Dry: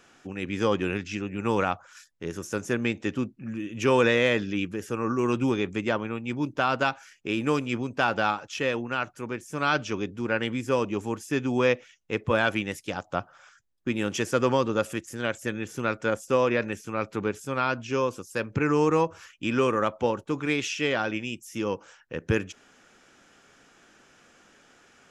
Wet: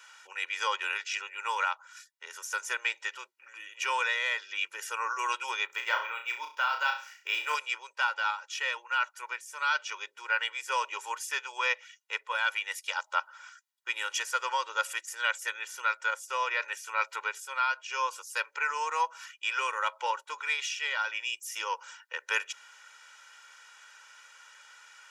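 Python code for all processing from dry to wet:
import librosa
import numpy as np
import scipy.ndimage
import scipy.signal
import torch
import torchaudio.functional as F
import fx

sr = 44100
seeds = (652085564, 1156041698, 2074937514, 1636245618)

y = fx.chain(x, sr, fx.room_flutter(wall_m=5.7, rt60_s=0.36),
    fx.resample_linear(factor=2), at=(5.66, 7.55))
y = scipy.signal.sosfilt(scipy.signal.butter(4, 910.0, 'highpass', fs=sr, output='sos'), y)
y = y + 0.89 * np.pad(y, (int(2.1 * sr / 1000.0), 0))[:len(y)]
y = fx.rider(y, sr, range_db=5, speed_s=0.5)
y = y * librosa.db_to_amplitude(-2.0)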